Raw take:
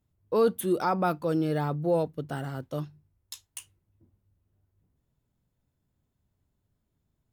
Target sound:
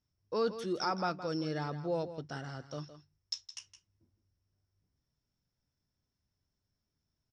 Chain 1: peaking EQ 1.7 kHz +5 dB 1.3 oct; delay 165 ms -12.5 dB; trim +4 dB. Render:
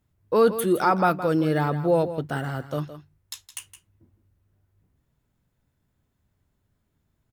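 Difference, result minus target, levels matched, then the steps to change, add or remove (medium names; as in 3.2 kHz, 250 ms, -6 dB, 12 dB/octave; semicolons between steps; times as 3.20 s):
4 kHz band -11.5 dB
add first: four-pole ladder low-pass 5.6 kHz, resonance 90%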